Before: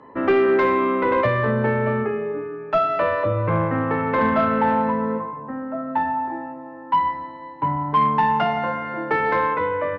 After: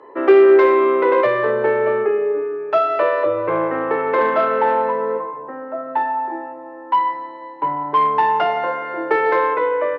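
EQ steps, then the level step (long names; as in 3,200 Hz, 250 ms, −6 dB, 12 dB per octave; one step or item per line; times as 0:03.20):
high-pass filter 140 Hz 24 dB per octave
low shelf with overshoot 290 Hz −8.5 dB, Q 3
+1.5 dB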